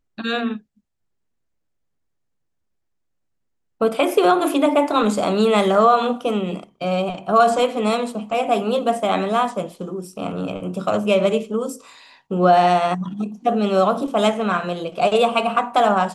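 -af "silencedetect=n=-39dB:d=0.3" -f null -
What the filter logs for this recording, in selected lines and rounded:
silence_start: 0.59
silence_end: 3.81 | silence_duration: 3.22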